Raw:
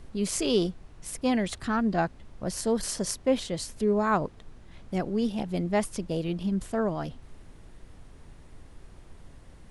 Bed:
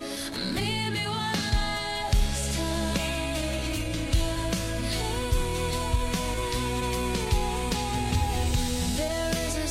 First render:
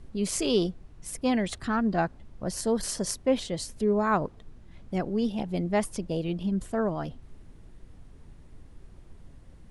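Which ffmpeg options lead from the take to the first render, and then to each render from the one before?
-af "afftdn=nr=6:nf=-51"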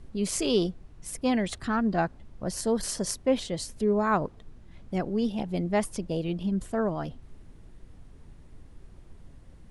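-af anull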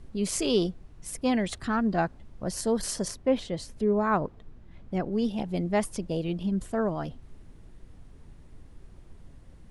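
-filter_complex "[0:a]asettb=1/sr,asplit=3[s0][s1][s2];[s0]atrim=end=3.084[s3];[s1]atrim=start=3.08:end=5.13,asetpts=PTS-STARTPTS,afade=t=in:d=0.004:c=qsin,afade=t=out:st=2.046:d=0.004:c=qsin,highshelf=f=4800:g=-10.5[s4];[s2]atrim=start=5.126[s5];[s3][s4]acrossfade=d=0.004:c1=hsin:c2=qsin[s6];[s6][s5]acrossfade=d=0.004:c1=qsin:c2=hsin"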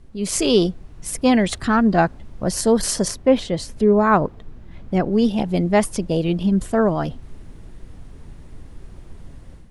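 -af "dynaudnorm=f=180:g=3:m=3.16"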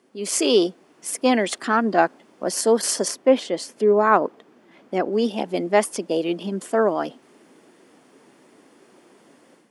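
-af "highpass=f=270:w=0.5412,highpass=f=270:w=1.3066,bandreject=f=3900:w=11"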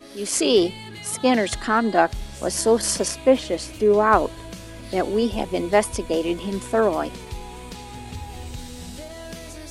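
-filter_complex "[1:a]volume=0.355[s0];[0:a][s0]amix=inputs=2:normalize=0"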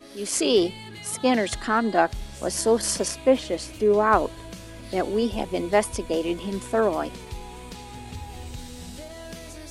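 -af "volume=0.75"

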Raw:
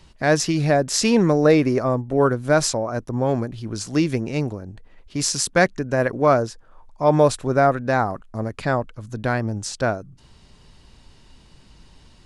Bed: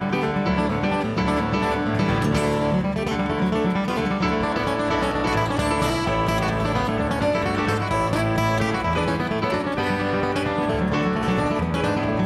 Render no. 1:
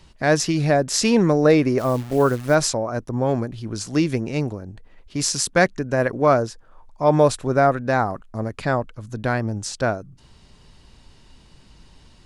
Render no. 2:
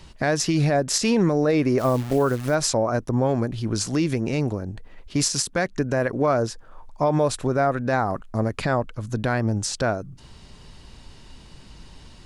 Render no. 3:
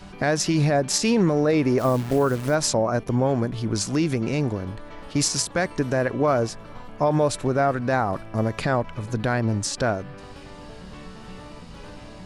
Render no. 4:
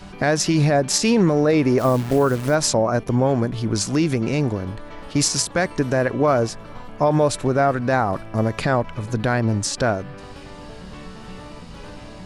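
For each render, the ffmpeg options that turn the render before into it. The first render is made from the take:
-filter_complex "[0:a]asplit=3[s0][s1][s2];[s0]afade=t=out:st=1.78:d=0.02[s3];[s1]acrusher=bits=7:dc=4:mix=0:aa=0.000001,afade=t=in:st=1.78:d=0.02,afade=t=out:st=2.54:d=0.02[s4];[s2]afade=t=in:st=2.54:d=0.02[s5];[s3][s4][s5]amix=inputs=3:normalize=0"
-filter_complex "[0:a]asplit=2[s0][s1];[s1]acompressor=threshold=0.0562:ratio=6,volume=0.708[s2];[s0][s2]amix=inputs=2:normalize=0,alimiter=limit=0.266:level=0:latency=1:release=124"
-filter_complex "[1:a]volume=0.0944[s0];[0:a][s0]amix=inputs=2:normalize=0"
-af "volume=1.41"

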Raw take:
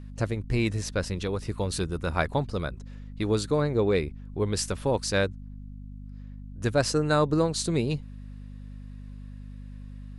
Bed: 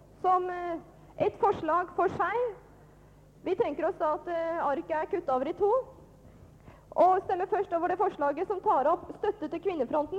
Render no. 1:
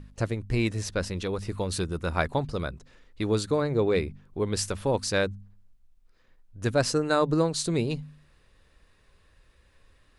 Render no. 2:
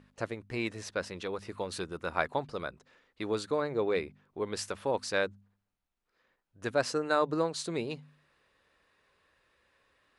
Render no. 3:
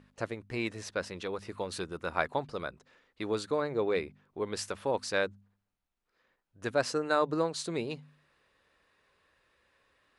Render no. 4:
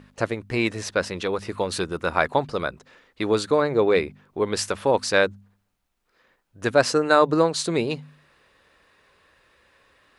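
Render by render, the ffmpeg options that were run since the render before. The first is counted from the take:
-af "bandreject=f=50:t=h:w=4,bandreject=f=100:t=h:w=4,bandreject=f=150:t=h:w=4,bandreject=f=200:t=h:w=4,bandreject=f=250:t=h:w=4"
-af "highpass=f=640:p=1,highshelf=f=3800:g=-11"
-af anull
-af "volume=3.35,alimiter=limit=0.708:level=0:latency=1"

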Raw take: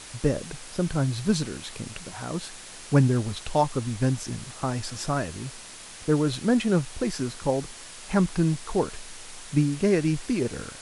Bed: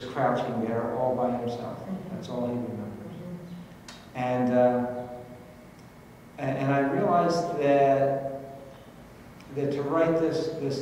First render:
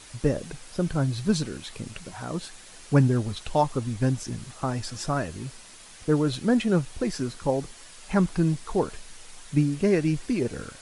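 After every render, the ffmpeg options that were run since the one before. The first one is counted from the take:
-af "afftdn=nr=6:nf=-43"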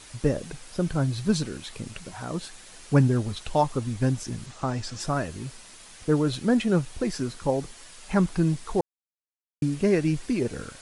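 -filter_complex "[0:a]asettb=1/sr,asplit=3[s0][s1][s2];[s0]atrim=end=4.464[s3];[s1]atrim=start=4.46:end=5,asetpts=PTS-STARTPTS,afade=t=in:d=0.004:c=qsin,afade=t=out:st=0.536:d=0.004:c=qsin,lowpass=f=8300:w=0.5412,lowpass=f=8300:w=1.3066[s4];[s2]atrim=start=4.996[s5];[s3][s4]acrossfade=d=0.004:c1=hsin:c2=qsin[s6];[s6][s5]acrossfade=d=0.004:c1=qsin:c2=hsin,asplit=3[s7][s8][s9];[s7]atrim=end=8.81,asetpts=PTS-STARTPTS,afade=t=out:st=8.806:d=0.004:c=hsin[s10];[s8]atrim=start=8.81:end=9.62,asetpts=PTS-STARTPTS,volume=0[s11];[s9]atrim=start=9.62,asetpts=PTS-STARTPTS,afade=t=in:d=0.004:c=hsin[s12];[s10][s11][s12]concat=n=3:v=0:a=1"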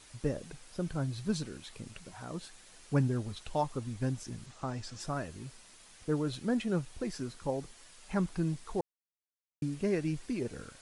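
-af "volume=0.355"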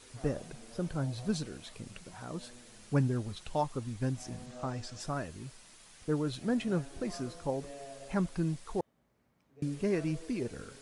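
-filter_complex "[1:a]volume=0.0501[s0];[0:a][s0]amix=inputs=2:normalize=0"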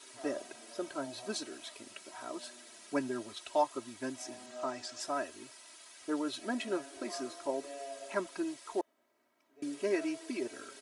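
-af "highpass=390,aecho=1:1:3.1:0.92"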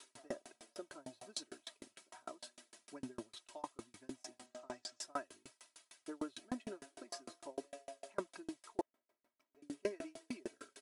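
-af "aeval=exprs='val(0)*pow(10,-36*if(lt(mod(6.6*n/s,1),2*abs(6.6)/1000),1-mod(6.6*n/s,1)/(2*abs(6.6)/1000),(mod(6.6*n/s,1)-2*abs(6.6)/1000)/(1-2*abs(6.6)/1000))/20)':c=same"

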